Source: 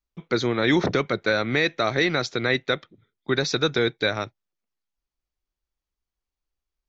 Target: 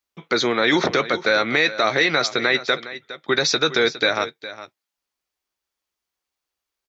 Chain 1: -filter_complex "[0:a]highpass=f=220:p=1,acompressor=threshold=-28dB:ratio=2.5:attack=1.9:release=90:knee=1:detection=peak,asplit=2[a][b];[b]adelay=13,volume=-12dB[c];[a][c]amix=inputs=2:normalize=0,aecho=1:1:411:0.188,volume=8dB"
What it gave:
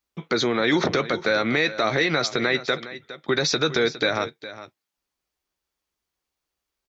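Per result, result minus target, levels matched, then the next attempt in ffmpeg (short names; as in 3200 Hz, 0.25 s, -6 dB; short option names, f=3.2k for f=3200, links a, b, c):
compressor: peak gain reduction +4.5 dB; 250 Hz band +3.0 dB
-filter_complex "[0:a]highpass=f=220:p=1,acompressor=threshold=-21.5dB:ratio=2.5:attack=1.9:release=90:knee=1:detection=peak,asplit=2[a][b];[b]adelay=13,volume=-12dB[c];[a][c]amix=inputs=2:normalize=0,aecho=1:1:411:0.188,volume=8dB"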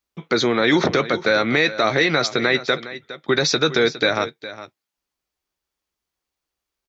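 250 Hz band +3.0 dB
-filter_complex "[0:a]highpass=f=560:p=1,acompressor=threshold=-21.5dB:ratio=2.5:attack=1.9:release=90:knee=1:detection=peak,asplit=2[a][b];[b]adelay=13,volume=-12dB[c];[a][c]amix=inputs=2:normalize=0,aecho=1:1:411:0.188,volume=8dB"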